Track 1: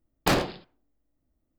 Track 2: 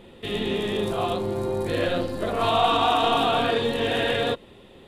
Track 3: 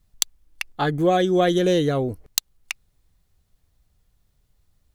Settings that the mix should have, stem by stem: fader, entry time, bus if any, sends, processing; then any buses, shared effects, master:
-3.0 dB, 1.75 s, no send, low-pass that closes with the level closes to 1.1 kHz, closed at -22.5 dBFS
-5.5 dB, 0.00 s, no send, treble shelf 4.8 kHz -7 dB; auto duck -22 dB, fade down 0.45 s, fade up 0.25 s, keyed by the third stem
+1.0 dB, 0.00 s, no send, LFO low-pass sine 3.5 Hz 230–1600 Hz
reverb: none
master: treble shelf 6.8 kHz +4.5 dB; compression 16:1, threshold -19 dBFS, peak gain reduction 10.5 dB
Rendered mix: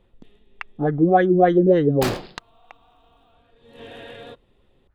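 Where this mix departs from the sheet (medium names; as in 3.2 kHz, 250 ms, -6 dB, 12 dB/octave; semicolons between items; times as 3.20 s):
stem 1: missing low-pass that closes with the level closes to 1.1 kHz, closed at -22.5 dBFS; stem 2 -5.5 dB -> -15.5 dB; master: missing compression 16:1, threshold -19 dBFS, peak gain reduction 10.5 dB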